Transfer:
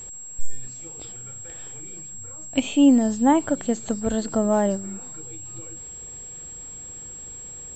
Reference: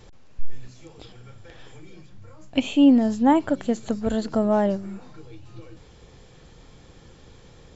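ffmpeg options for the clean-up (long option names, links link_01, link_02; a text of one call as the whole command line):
ffmpeg -i in.wav -af "bandreject=frequency=7600:width=30" out.wav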